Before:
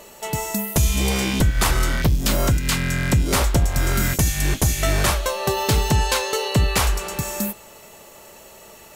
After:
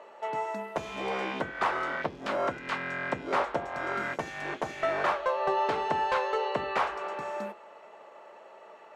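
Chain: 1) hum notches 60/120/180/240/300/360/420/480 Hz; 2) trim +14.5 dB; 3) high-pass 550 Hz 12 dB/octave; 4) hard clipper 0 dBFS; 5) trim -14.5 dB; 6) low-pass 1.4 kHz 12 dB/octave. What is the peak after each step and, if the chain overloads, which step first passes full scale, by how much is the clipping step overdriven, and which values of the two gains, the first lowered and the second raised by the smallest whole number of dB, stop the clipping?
-7.5 dBFS, +7.0 dBFS, +8.0 dBFS, 0.0 dBFS, -14.5 dBFS, -14.5 dBFS; step 2, 8.0 dB; step 2 +6.5 dB, step 5 -6.5 dB

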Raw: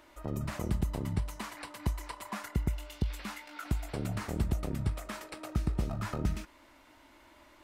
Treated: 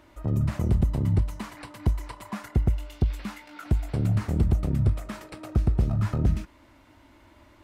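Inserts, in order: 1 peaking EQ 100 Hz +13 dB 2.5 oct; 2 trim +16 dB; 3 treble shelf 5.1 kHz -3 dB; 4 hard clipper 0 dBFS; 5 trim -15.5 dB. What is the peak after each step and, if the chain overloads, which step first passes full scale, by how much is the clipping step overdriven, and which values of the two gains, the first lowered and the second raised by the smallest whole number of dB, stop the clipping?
-8.5 dBFS, +7.5 dBFS, +7.5 dBFS, 0.0 dBFS, -15.5 dBFS; step 2, 7.5 dB; step 2 +8 dB, step 5 -7.5 dB

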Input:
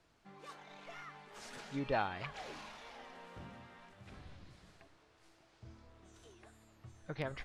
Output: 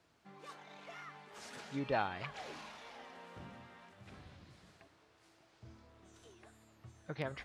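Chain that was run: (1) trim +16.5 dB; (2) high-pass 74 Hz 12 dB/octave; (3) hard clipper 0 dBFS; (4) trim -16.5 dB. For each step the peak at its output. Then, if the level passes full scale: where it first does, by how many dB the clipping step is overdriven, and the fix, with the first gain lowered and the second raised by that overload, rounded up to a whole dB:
-4.0 dBFS, -3.5 dBFS, -3.5 dBFS, -20.0 dBFS; nothing clips

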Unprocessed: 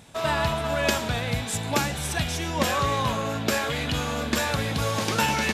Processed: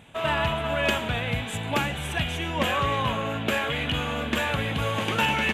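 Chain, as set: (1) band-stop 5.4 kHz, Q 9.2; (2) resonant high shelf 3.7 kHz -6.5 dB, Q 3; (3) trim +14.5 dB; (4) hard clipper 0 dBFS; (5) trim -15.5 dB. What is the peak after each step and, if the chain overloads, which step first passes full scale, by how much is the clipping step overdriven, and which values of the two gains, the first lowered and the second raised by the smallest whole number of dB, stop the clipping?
-9.0 dBFS, -8.0 dBFS, +6.5 dBFS, 0.0 dBFS, -15.5 dBFS; step 3, 6.5 dB; step 3 +7.5 dB, step 5 -8.5 dB

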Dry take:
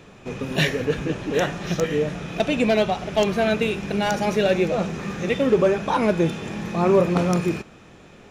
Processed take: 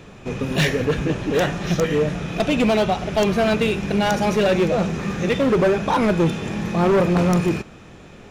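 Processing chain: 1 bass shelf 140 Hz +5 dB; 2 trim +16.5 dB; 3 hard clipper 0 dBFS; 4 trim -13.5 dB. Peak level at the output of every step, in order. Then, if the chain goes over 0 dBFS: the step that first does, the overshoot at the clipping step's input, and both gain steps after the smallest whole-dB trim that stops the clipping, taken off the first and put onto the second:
-7.5 dBFS, +9.0 dBFS, 0.0 dBFS, -13.5 dBFS; step 2, 9.0 dB; step 2 +7.5 dB, step 4 -4.5 dB

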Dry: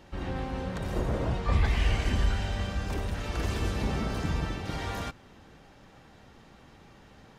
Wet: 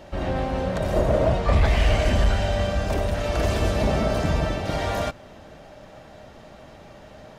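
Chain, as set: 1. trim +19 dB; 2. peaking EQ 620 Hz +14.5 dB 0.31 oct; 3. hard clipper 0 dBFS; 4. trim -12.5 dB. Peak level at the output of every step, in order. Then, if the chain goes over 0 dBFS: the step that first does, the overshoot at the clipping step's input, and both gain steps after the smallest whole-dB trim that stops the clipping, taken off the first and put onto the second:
+5.0 dBFS, +7.0 dBFS, 0.0 dBFS, -12.5 dBFS; step 1, 7.0 dB; step 1 +12 dB, step 4 -5.5 dB

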